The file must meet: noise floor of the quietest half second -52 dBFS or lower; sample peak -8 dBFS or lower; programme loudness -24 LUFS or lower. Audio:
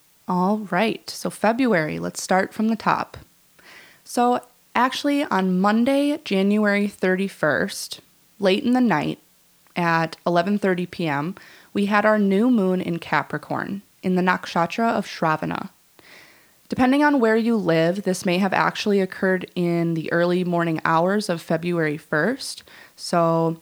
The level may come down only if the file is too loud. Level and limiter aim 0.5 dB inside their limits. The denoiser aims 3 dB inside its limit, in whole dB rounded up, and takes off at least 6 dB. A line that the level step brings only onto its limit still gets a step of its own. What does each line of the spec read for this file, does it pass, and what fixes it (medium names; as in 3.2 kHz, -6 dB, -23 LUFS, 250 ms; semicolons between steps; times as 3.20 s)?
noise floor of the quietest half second -57 dBFS: pass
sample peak -3.5 dBFS: fail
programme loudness -21.5 LUFS: fail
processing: trim -3 dB; peak limiter -8.5 dBFS